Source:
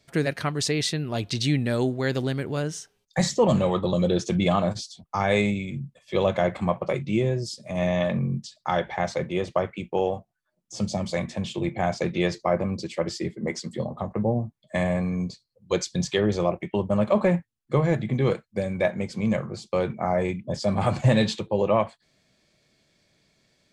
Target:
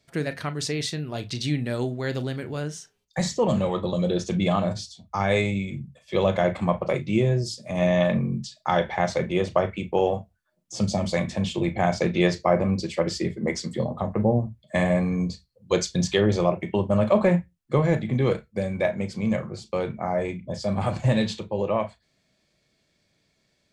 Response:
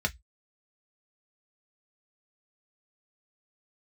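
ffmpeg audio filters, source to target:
-filter_complex "[0:a]dynaudnorm=f=380:g=31:m=6.5dB,asplit=2[a][b];[1:a]atrim=start_sample=2205,atrim=end_sample=6174,adelay=34[c];[b][c]afir=irnorm=-1:irlink=0,volume=-18.5dB[d];[a][d]amix=inputs=2:normalize=0,volume=-3.5dB"

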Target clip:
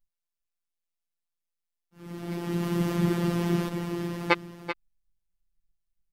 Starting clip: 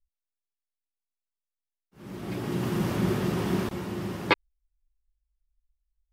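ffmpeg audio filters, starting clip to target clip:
-af "aecho=1:1:385:0.316,afftfilt=real='hypot(re,im)*cos(PI*b)':imag='0':win_size=1024:overlap=0.75,volume=2.5dB"

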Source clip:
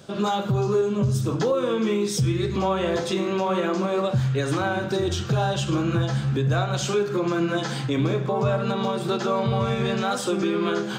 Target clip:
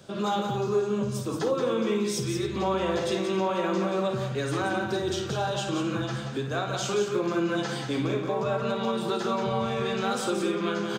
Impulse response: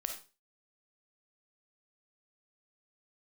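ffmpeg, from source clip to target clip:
-filter_complex "[0:a]acrossover=split=210[a][b];[a]acompressor=threshold=-34dB:ratio=6[c];[c][b]amix=inputs=2:normalize=0,aecho=1:1:53|178|209|267:0.335|0.473|0.112|0.133,volume=-4dB"

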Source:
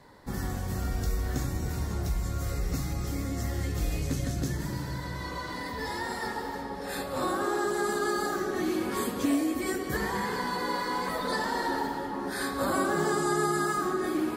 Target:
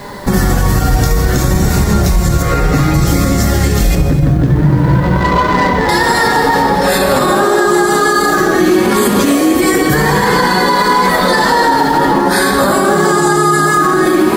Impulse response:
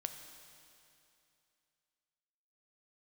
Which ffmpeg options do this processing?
-filter_complex "[0:a]asettb=1/sr,asplit=3[a][b][c];[a]atrim=end=2.424[d];[b]atrim=start=2.42:end=2.94,asetpts=PTS-STARTPTS,afade=t=in:d=0.004:c=qsin,afade=t=out:st=0.516:d=0.004:c=qsin,bass=f=250:g=-7,treble=f=4k:g=-13[e];[c]atrim=start=2.936[f];[d][e]acrossfade=d=0.004:c1=hsin:c2=qsin[g];[g][f]acrossfade=d=0.004:c1=qsin:c2=hsin,acompressor=threshold=-32dB:ratio=4,flanger=delay=4.9:depth=1.7:regen=43:speed=0.55:shape=sinusoidal,asettb=1/sr,asplit=3[h][i][j];[h]atrim=end=3.954[k];[i]atrim=start=3.95:end=5.89,asetpts=PTS-STARTPTS,afade=t=in:d=0.004:c=qsin,afade=t=out:st=1.936:d=0.004:c=qsin,adynamicsmooth=sensitivity=8:basefreq=700[l];[j]atrim=start=5.886[m];[k][l]acrossfade=d=0.004:c1=hsin:c2=qsin[n];[n][m]acrossfade=d=0.004:c1=qsin:c2=hsin,acrusher=bits=11:mix=0:aa=0.000001[o];[1:a]atrim=start_sample=2205,afade=t=out:st=0.43:d=0.01,atrim=end_sample=19404[p];[o][p]afir=irnorm=-1:irlink=0,alimiter=level_in=33.5dB:limit=-1dB:release=50:level=0:latency=1,volume=-1dB"

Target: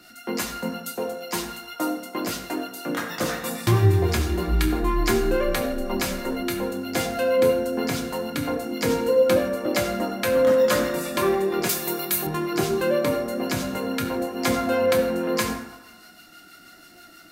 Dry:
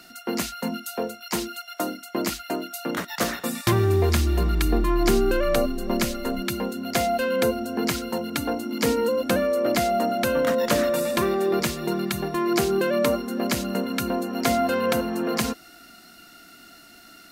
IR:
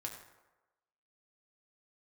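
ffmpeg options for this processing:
-filter_complex "[0:a]acrossover=split=700[a][b];[a]aeval=exprs='val(0)*(1-0.5/2+0.5/2*cos(2*PI*6.2*n/s))':c=same[c];[b]aeval=exprs='val(0)*(1-0.5/2-0.5/2*cos(2*PI*6.2*n/s))':c=same[d];[c][d]amix=inputs=2:normalize=0[e];[1:a]atrim=start_sample=2205[f];[e][f]afir=irnorm=-1:irlink=0,flanger=delay=4.7:depth=2.2:regen=79:speed=0.19:shape=sinusoidal,asettb=1/sr,asplit=3[g][h][i];[g]atrim=end=11.694[j];[h]atrim=start=11.69:end=12.27,asetpts=PTS-STARTPTS,afade=t=in:d=0.004:c=qsin,afade=t=out:st=0.576:d=0.004:c=qsin,aemphasis=mode=production:type=bsi[k];[i]atrim=start=12.266[l];[j][k]acrossfade=d=0.004:c1=hsin:c2=qsin[m];[m][l]acrossfade=d=0.004:c1=qsin:c2=hsin,volume=8.5dB"

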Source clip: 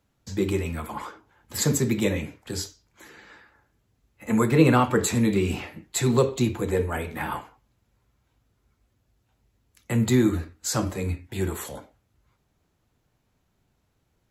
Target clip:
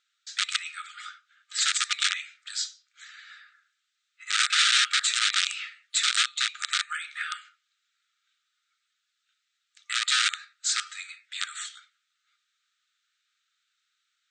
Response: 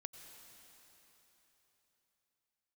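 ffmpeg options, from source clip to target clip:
-af "aeval=exprs='(mod(7.08*val(0)+1,2)-1)/7.08':c=same,equalizer=f=3.7k:w=3.2:g=8,afftfilt=real='re*between(b*sr/4096,1200,9000)':imag='im*between(b*sr/4096,1200,9000)':win_size=4096:overlap=0.75,volume=1.5dB"

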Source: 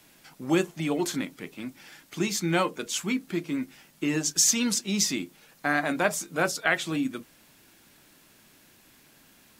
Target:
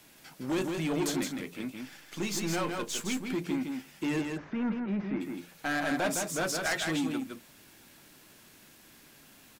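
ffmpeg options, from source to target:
-filter_complex "[0:a]asettb=1/sr,asplit=3[a][b][c];[a]atrim=end=1.814[d];[b]atrim=start=1.81:end=3.23,asetpts=PTS-STARTPTS,afade=t=in:d=0.004:c=qsin,afade=t=out:st=1.416:d=0.004:c=qsin,aeval=exprs='if(lt(val(0),0),0.447*val(0),val(0))':c=same[e];[c]atrim=start=3.226[f];[d][e]acrossfade=d=0.004:c1=hsin:c2=qsin[g];[g][f]acrossfade=d=0.004:c1=qsin:c2=hsin,bandreject=f=86.86:t=h:w=4,bandreject=f=173.72:t=h:w=4,asoftclip=type=tanh:threshold=-26dB,asplit=3[h][i][j];[h]afade=t=out:st=4.2:d=0.02[k];[i]lowpass=f=1.8k:w=0.5412,lowpass=f=1.8k:w=1.3066,afade=t=in:st=4.2:d=0.02,afade=t=out:st=5.2:d=0.02[l];[j]afade=t=in:st=5.2:d=0.02[m];[k][l][m]amix=inputs=3:normalize=0,aecho=1:1:162:0.596"

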